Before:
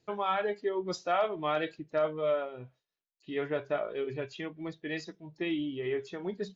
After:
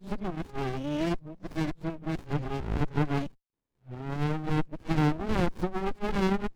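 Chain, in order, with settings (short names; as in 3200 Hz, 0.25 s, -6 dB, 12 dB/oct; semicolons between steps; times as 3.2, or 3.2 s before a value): whole clip reversed; running maximum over 65 samples; gain +6.5 dB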